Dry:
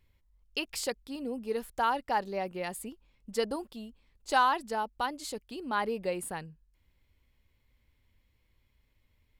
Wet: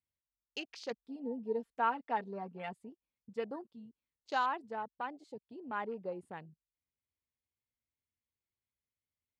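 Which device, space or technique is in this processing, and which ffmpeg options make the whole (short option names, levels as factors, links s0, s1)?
over-cleaned archive recording: -filter_complex "[0:a]highpass=100,lowpass=5900,afwtdn=0.00891,asettb=1/sr,asplit=3[s0][s1][s2];[s0]atrim=end=0.904[s3];[s1]atrim=start=0.9:end=2.73,asetpts=PTS-STARTPTS,afade=t=in:d=0.004:c=qsin,afade=t=out:st=1.826:d=0.004:c=qsin,aecho=1:1:4.4:0.85,atrim=end_sample=80703[s4];[s2]atrim=start=2.726[s5];[s3][s4]acrossfade=d=0.004:c1=hsin:c2=qsin[s6];[s6][s5]acrossfade=d=0.004:c1=qsin:c2=hsin,volume=0.422"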